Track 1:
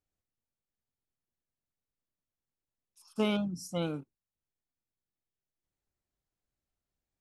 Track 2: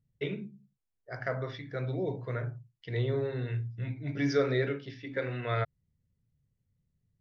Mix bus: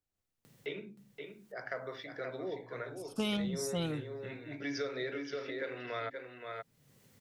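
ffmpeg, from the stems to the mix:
ffmpeg -i stem1.wav -i stem2.wav -filter_complex "[0:a]dynaudnorm=framelen=120:gausssize=3:maxgain=7dB,volume=-2.5dB[link_01];[1:a]highpass=320,acompressor=mode=upward:threshold=-37dB:ratio=2.5,adelay=450,volume=-2.5dB,asplit=2[link_02][link_03];[link_03]volume=-7.5dB,aecho=0:1:524:1[link_04];[link_01][link_02][link_04]amix=inputs=3:normalize=0,acrossover=split=130|3000[link_05][link_06][link_07];[link_06]acompressor=threshold=-35dB:ratio=4[link_08];[link_05][link_08][link_07]amix=inputs=3:normalize=0" out.wav

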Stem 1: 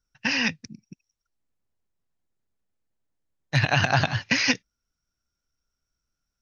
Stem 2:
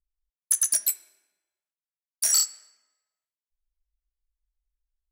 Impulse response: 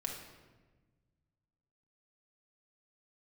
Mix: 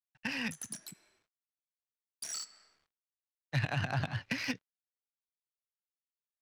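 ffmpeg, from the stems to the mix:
-filter_complex "[0:a]volume=-9dB,asplit=2[link_01][link_02];[1:a]alimiter=limit=-15dB:level=0:latency=1:release=81,volume=-3dB,asplit=2[link_03][link_04];[link_04]volume=-13dB[link_05];[link_02]apad=whole_len=225396[link_06];[link_03][link_06]sidechaincompress=threshold=-36dB:ratio=8:attack=30:release=366[link_07];[2:a]atrim=start_sample=2205[link_08];[link_05][link_08]afir=irnorm=-1:irlink=0[link_09];[link_01][link_07][link_09]amix=inputs=3:normalize=0,acrossover=split=280[link_10][link_11];[link_11]acompressor=threshold=-33dB:ratio=4[link_12];[link_10][link_12]amix=inputs=2:normalize=0,acrusher=bits=10:mix=0:aa=0.000001,adynamicsmooth=sensitivity=6.5:basefreq=3600"

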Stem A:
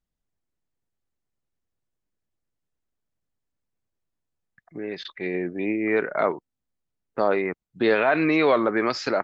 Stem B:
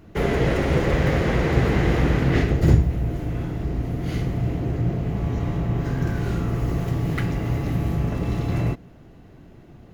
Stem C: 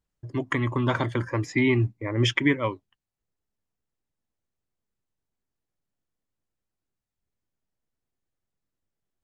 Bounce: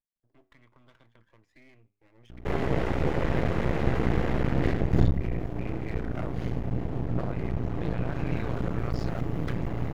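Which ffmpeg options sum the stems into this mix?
ffmpeg -i stem1.wav -i stem2.wav -i stem3.wav -filter_complex "[0:a]highshelf=frequency=4500:gain=9.5,volume=-3dB[link_01];[1:a]aeval=exprs='val(0)+0.0126*(sin(2*PI*60*n/s)+sin(2*PI*2*60*n/s)/2+sin(2*PI*3*60*n/s)/3+sin(2*PI*4*60*n/s)/4+sin(2*PI*5*60*n/s)/5)':channel_layout=same,adelay=2300,volume=-2dB[link_02];[2:a]lowpass=3200,aemphasis=mode=production:type=bsi,acrossover=split=240|2100[link_03][link_04][link_05];[link_03]acompressor=threshold=-33dB:ratio=4[link_06];[link_04]acompressor=threshold=-37dB:ratio=4[link_07];[link_05]acompressor=threshold=-32dB:ratio=4[link_08];[link_06][link_07][link_08]amix=inputs=3:normalize=0,volume=-17dB[link_09];[link_01][link_09]amix=inputs=2:normalize=0,flanger=delay=8.7:depth=2.2:regen=85:speed=0.89:shape=triangular,acompressor=threshold=-31dB:ratio=10,volume=0dB[link_10];[link_02][link_10]amix=inputs=2:normalize=0,highshelf=frequency=3200:gain=-12,aeval=exprs='max(val(0),0)':channel_layout=same" out.wav

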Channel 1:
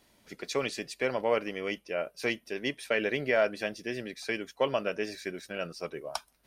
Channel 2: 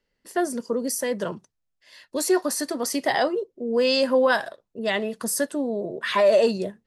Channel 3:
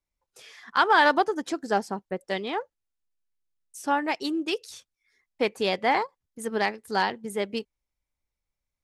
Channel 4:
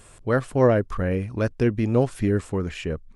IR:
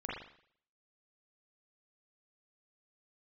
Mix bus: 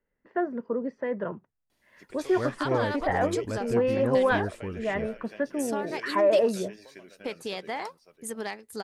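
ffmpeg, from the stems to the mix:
-filter_complex "[0:a]acompressor=threshold=-33dB:ratio=4,adelay=1700,volume=-9.5dB,asplit=2[link_01][link_02];[link_02]volume=-9.5dB[link_03];[1:a]lowpass=frequency=2000:width=0.5412,lowpass=frequency=2000:width=1.3066,volume=-3.5dB[link_04];[2:a]highshelf=frequency=5400:gain=7.5,bandreject=frequency=5600:width=22,acompressor=threshold=-30dB:ratio=4,adelay=1850,volume=-2dB[link_05];[3:a]adelay=2100,volume=-10dB[link_06];[link_03]aecho=0:1:551:1[link_07];[link_01][link_04][link_05][link_06][link_07]amix=inputs=5:normalize=0"

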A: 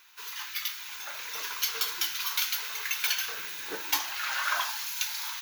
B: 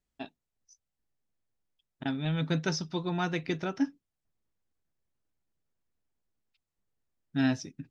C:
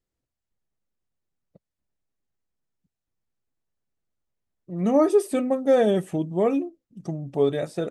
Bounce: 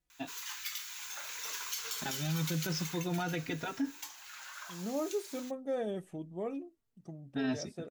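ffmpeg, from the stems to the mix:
ffmpeg -i stem1.wav -i stem2.wav -i stem3.wav -filter_complex "[0:a]equalizer=frequency=7600:width_type=o:width=0.5:gain=12,acrossover=split=160[link_01][link_02];[link_02]acompressor=threshold=-33dB:ratio=1.5[link_03];[link_01][link_03]amix=inputs=2:normalize=0,adelay=100,volume=-5dB,afade=type=out:start_time=2.78:duration=0.29:silence=0.298538[link_04];[1:a]asplit=2[link_05][link_06];[link_06]adelay=3.6,afreqshift=-0.34[link_07];[link_05][link_07]amix=inputs=2:normalize=1,volume=2.5dB[link_08];[2:a]agate=range=-33dB:threshold=-42dB:ratio=3:detection=peak,volume=-16dB[link_09];[link_04][link_08][link_09]amix=inputs=3:normalize=0,alimiter=level_in=1.5dB:limit=-24dB:level=0:latency=1:release=45,volume=-1.5dB" out.wav

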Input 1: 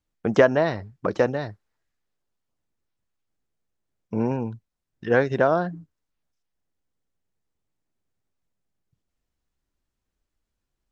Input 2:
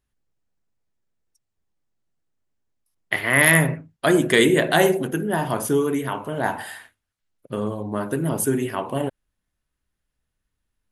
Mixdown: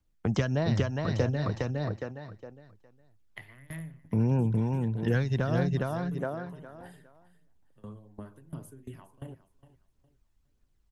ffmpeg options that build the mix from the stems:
ffmpeg -i stem1.wav -i stem2.wav -filter_complex "[0:a]volume=-1dB,asplit=2[link_01][link_02];[link_02]volume=-3dB[link_03];[1:a]acrossover=split=180[link_04][link_05];[link_05]acompressor=threshold=-27dB:ratio=5[link_06];[link_04][link_06]amix=inputs=2:normalize=0,aeval=exprs='val(0)*pow(10,-22*if(lt(mod(2.9*n/s,1),2*abs(2.9)/1000),1-mod(2.9*n/s,1)/(2*abs(2.9)/1000),(mod(2.9*n/s,1)-2*abs(2.9)/1000)/(1-2*abs(2.9)/1000))/20)':channel_layout=same,adelay=250,volume=-15dB,asplit=2[link_07][link_08];[link_08]volume=-15.5dB[link_09];[link_03][link_09]amix=inputs=2:normalize=0,aecho=0:1:411|822|1233|1644:1|0.25|0.0625|0.0156[link_10];[link_01][link_07][link_10]amix=inputs=3:normalize=0,lowshelf=frequency=150:gain=8,acrossover=split=160|3000[link_11][link_12][link_13];[link_12]acompressor=threshold=-29dB:ratio=10[link_14];[link_11][link_14][link_13]amix=inputs=3:normalize=0,aphaser=in_gain=1:out_gain=1:delay=1.2:decay=0.31:speed=1.6:type=triangular" out.wav

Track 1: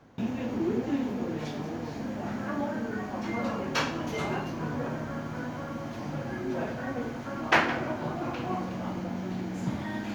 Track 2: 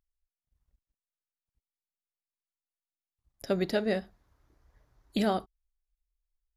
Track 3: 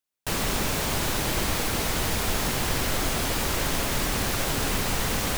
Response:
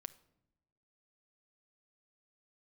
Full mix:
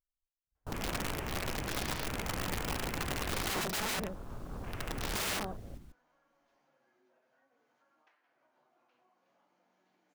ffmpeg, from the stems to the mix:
-filter_complex "[0:a]flanger=delay=6.5:depth=1.5:regen=64:speed=0.54:shape=sinusoidal,highpass=580,acompressor=threshold=-44dB:ratio=8,adelay=550,volume=-9.5dB[link_01];[1:a]volume=0.5dB,asplit=3[link_02][link_03][link_04];[link_03]volume=-13.5dB[link_05];[2:a]adelay=400,volume=-11.5dB,asplit=2[link_06][link_07];[link_07]volume=-14.5dB[link_08];[link_04]apad=whole_len=254750[link_09];[link_06][link_09]sidechaincompress=threshold=-34dB:ratio=10:attack=16:release=1440[link_10];[link_05][link_08]amix=inputs=2:normalize=0,aecho=0:1:143:1[link_11];[link_01][link_02][link_10][link_11]amix=inputs=4:normalize=0,afwtdn=0.00631,lowshelf=frequency=170:gain=5.5,aeval=exprs='(mod(29.9*val(0)+1,2)-1)/29.9':channel_layout=same"

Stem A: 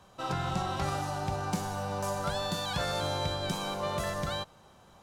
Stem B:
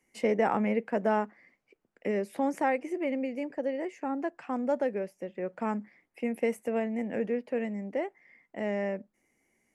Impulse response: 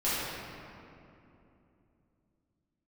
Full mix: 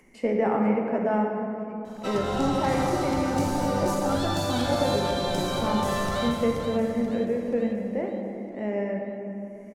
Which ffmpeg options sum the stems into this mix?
-filter_complex "[0:a]bass=frequency=250:gain=-3,treble=frequency=4000:gain=4,alimiter=level_in=2.5dB:limit=-24dB:level=0:latency=1:release=284,volume=-2.5dB,adelay=1850,volume=-1dB,asplit=3[link_01][link_02][link_03];[link_02]volume=-5dB[link_04];[link_03]volume=-3dB[link_05];[1:a]acompressor=mode=upward:threshold=-45dB:ratio=2.5,highshelf=frequency=2900:gain=-8.5,volume=-3.5dB,asplit=3[link_06][link_07][link_08];[link_07]volume=-8.5dB[link_09];[link_08]volume=-14dB[link_10];[2:a]atrim=start_sample=2205[link_11];[link_04][link_09]amix=inputs=2:normalize=0[link_12];[link_12][link_11]afir=irnorm=-1:irlink=0[link_13];[link_05][link_10]amix=inputs=2:normalize=0,aecho=0:1:481|962|1443|1924|2405|2886:1|0.46|0.212|0.0973|0.0448|0.0206[link_14];[link_01][link_06][link_13][link_14]amix=inputs=4:normalize=0,lowshelf=frequency=340:gain=4.5"

